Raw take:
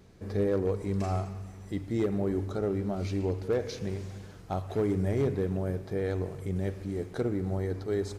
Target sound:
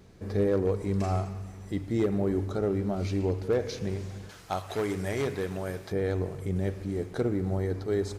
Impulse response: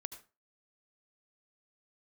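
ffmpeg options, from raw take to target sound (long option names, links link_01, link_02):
-filter_complex "[0:a]asettb=1/sr,asplit=3[link_01][link_02][link_03];[link_01]atrim=end=4.294[link_04];[link_02]atrim=start=4.29:end=5.92,asetpts=PTS-STARTPTS,afade=type=in:duration=0.004:curve=qsin,afade=type=out:start_time=1.626:duration=0.004:curve=qsin,tiltshelf=frequency=680:gain=-8[link_05];[link_03]atrim=start=5.916[link_06];[link_04][link_05]acrossfade=duration=0.004:curve1=hsin:curve2=qsin[link_07];[link_07][link_06]acrossfade=duration=0.004:curve1=qsin:curve2=hsin,volume=2dB"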